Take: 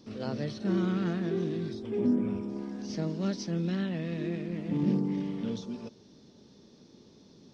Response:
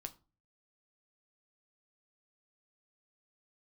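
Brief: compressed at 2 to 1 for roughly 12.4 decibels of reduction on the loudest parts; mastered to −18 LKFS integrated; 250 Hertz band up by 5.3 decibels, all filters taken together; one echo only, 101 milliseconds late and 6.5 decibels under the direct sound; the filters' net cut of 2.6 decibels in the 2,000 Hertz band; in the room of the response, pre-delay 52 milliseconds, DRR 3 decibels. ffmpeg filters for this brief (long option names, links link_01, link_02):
-filter_complex "[0:a]equalizer=frequency=250:width_type=o:gain=7,equalizer=frequency=2000:width_type=o:gain=-3.5,acompressor=threshold=-40dB:ratio=2,aecho=1:1:101:0.473,asplit=2[link_01][link_02];[1:a]atrim=start_sample=2205,adelay=52[link_03];[link_02][link_03]afir=irnorm=-1:irlink=0,volume=1dB[link_04];[link_01][link_04]amix=inputs=2:normalize=0,volume=16.5dB"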